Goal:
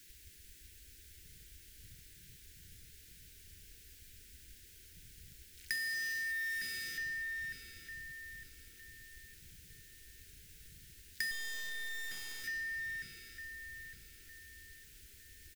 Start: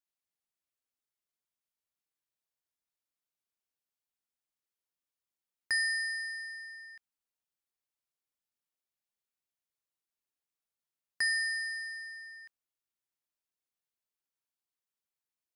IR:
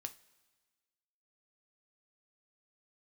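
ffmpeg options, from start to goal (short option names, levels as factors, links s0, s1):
-filter_complex "[0:a]aeval=exprs='val(0)+0.5*0.0168*sgn(val(0))':c=same,acrossover=split=110|780[s0][s1][s2];[s0]acontrast=72[s3];[s3][s1][s2]amix=inputs=3:normalize=0,afwtdn=0.00708,acrusher=bits=2:mode=log:mix=0:aa=0.000001,asuperstop=centerf=850:order=12:qfactor=0.8,asplit=2[s4][s5];[s5]adelay=908,lowpass=f=2500:p=1,volume=0.596,asplit=2[s6][s7];[s7]adelay=908,lowpass=f=2500:p=1,volume=0.42,asplit=2[s8][s9];[s9]adelay=908,lowpass=f=2500:p=1,volume=0.42,asplit=2[s10][s11];[s11]adelay=908,lowpass=f=2500:p=1,volume=0.42,asplit=2[s12][s13];[s13]adelay=908,lowpass=f=2500:p=1,volume=0.42[s14];[s4][s6][s8][s10][s12][s14]amix=inputs=6:normalize=0,acompressor=threshold=0.0141:ratio=6,asettb=1/sr,asplit=3[s15][s16][s17];[s15]atrim=end=11.314[s18];[s16]atrim=start=11.31:end=12.44,asetpts=PTS-STARTPTS,afade=t=in:d=0.004:c=qsin,afade=t=out:st=1.126:d=0.004:c=qsin,acrusher=bits=6:dc=4:mix=0:aa=0.000001[s19];[s17]atrim=start=12.436[s20];[s18][s19]acrossfade=d=0.004:c1=hsin:c2=qsin[s21];[s21][s20]acrossfade=d=0.004:c1=qsin:c2=hsin,volume=1.19"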